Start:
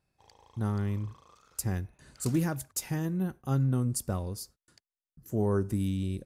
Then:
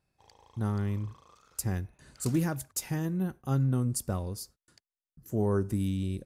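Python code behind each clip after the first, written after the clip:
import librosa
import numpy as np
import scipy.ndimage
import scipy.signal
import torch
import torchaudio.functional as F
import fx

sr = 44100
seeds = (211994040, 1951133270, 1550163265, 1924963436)

y = x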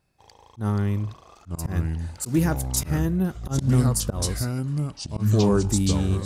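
y = fx.echo_pitch(x, sr, ms=739, semitones=-4, count=3, db_per_echo=-3.0)
y = fx.auto_swell(y, sr, attack_ms=122.0)
y = y * 10.0 ** (7.0 / 20.0)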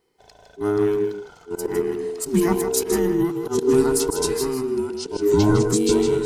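y = fx.band_invert(x, sr, width_hz=500)
y = y + 10.0 ** (-7.5 / 20.0) * np.pad(y, (int(157 * sr / 1000.0), 0))[:len(y)]
y = y * 10.0 ** (2.0 / 20.0)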